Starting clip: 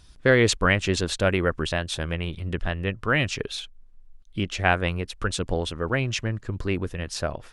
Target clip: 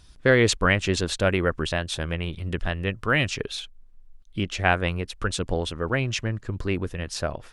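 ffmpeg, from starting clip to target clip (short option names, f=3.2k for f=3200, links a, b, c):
-filter_complex "[0:a]asettb=1/sr,asplit=3[a][b][c];[a]atrim=end=2.404[d];[b]atrim=start=2.4:end=3.3,asetpts=PTS-STARTPTS,afade=t=in:d=0.004:c=qsin,afade=t=out:st=0.896:d=0.004:c=qsin,highshelf=f=4.5k:g=5[e];[c]atrim=start=3.296[f];[d][e]acrossfade=d=0.004:c1=hsin:c2=qsin[g];[g][f]acrossfade=d=0.004:c1=qsin:c2=hsin"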